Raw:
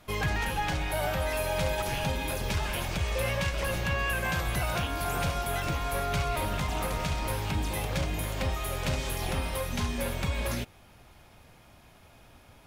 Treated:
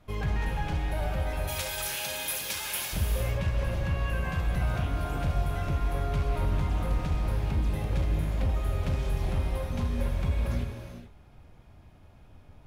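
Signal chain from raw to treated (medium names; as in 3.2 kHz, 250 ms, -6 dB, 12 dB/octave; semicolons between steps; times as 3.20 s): tilt EQ -2 dB/octave, from 1.47 s +4 dB/octave, from 2.92 s -2.5 dB/octave; hard clipper -16.5 dBFS, distortion -22 dB; gated-style reverb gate 470 ms flat, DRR 3.5 dB; trim -6.5 dB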